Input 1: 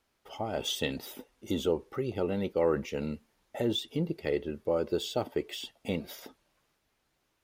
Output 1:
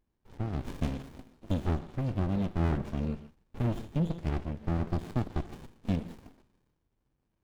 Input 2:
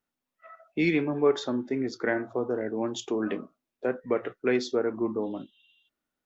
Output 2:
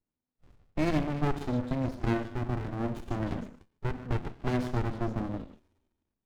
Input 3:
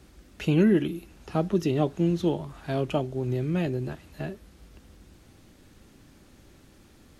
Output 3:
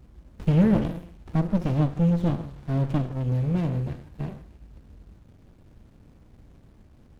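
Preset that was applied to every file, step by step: bass shelf 220 Hz +7.5 dB; repeats whose band climbs or falls 151 ms, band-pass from 1.2 kHz, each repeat 1.4 oct, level -9.5 dB; gated-style reverb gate 170 ms flat, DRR 10.5 dB; sliding maximum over 65 samples; trim -2 dB

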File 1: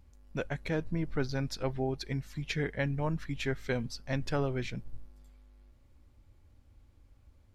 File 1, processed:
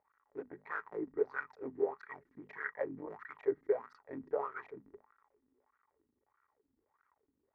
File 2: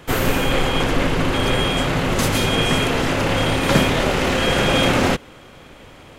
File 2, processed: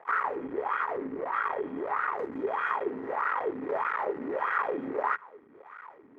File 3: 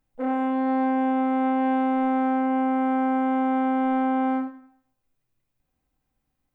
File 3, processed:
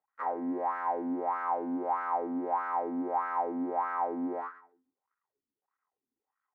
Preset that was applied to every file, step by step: cycle switcher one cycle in 3, muted; compression 2.5:1, threshold -27 dBFS; wah-wah 1.6 Hz 250–1400 Hz, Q 6.9; high-order bell 1.4 kHz +12 dB; small resonant body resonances 420/1900 Hz, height 12 dB, ringing for 55 ms; dynamic bell 580 Hz, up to +4 dB, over -43 dBFS, Q 0.96; hum notches 50/100/150/200/250 Hz

